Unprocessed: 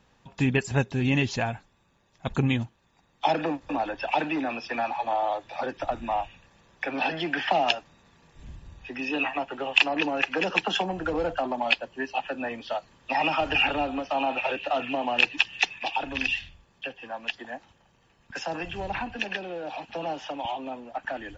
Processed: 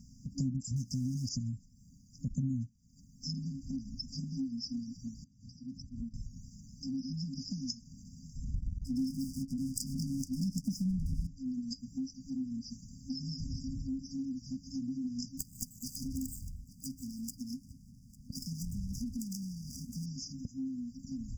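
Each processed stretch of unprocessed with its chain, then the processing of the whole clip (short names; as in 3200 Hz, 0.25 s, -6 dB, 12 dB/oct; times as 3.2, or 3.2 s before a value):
0.76–1.29 G.711 law mismatch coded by mu + bell 4400 Hz +11.5 dB 2.1 oct + compressor 1.5:1, threshold -29 dBFS
5.24–6.14 compressor 12:1, threshold -39 dBFS + high shelf 5000 Hz -9.5 dB + notch comb 420 Hz
8.54–11.27 tilt -2 dB/oct + sample leveller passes 2
15.37–20.06 median filter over 15 samples + echo 0.85 s -24 dB
whole clip: FFT band-reject 270–4700 Hz; compressor 3:1, threshold -49 dBFS; gain +11 dB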